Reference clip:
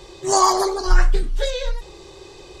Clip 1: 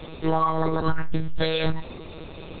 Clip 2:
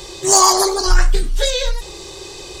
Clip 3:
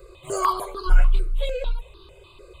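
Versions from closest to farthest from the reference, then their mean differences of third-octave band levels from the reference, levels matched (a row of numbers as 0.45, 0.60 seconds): 2, 3, 1; 3.5, 5.5, 12.0 decibels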